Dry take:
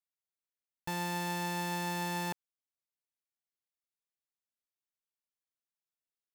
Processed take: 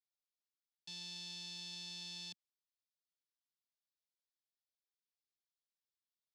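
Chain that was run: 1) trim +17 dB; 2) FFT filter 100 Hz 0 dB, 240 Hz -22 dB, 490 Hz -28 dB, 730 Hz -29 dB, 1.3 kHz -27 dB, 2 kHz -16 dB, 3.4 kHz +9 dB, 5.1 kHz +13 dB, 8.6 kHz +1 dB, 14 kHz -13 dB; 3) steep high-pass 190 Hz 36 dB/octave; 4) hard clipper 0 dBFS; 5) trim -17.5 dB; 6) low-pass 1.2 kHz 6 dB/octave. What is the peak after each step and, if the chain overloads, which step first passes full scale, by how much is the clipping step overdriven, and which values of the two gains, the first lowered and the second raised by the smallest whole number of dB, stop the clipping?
-10.5 dBFS, -4.5 dBFS, -4.5 dBFS, -4.5 dBFS, -22.0 dBFS, -34.5 dBFS; nothing clips

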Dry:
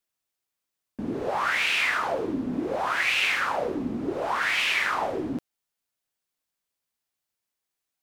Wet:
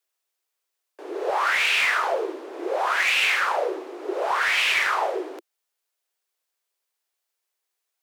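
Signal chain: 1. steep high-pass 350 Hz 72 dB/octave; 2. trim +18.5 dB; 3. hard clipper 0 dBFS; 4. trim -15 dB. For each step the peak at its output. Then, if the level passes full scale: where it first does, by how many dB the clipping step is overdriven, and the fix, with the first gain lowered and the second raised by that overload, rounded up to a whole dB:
-12.0 dBFS, +6.5 dBFS, 0.0 dBFS, -15.0 dBFS; step 2, 6.5 dB; step 2 +11.5 dB, step 4 -8 dB

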